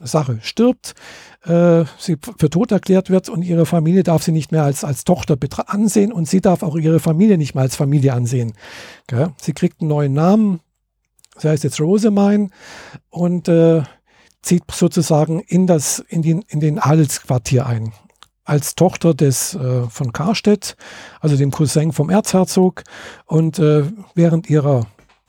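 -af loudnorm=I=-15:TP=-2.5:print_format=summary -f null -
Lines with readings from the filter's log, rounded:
Input Integrated:    -16.3 LUFS
Input True Peak:      -1.9 dBTP
Input LRA:             1.6 LU
Input Threshold:     -26.9 LUFS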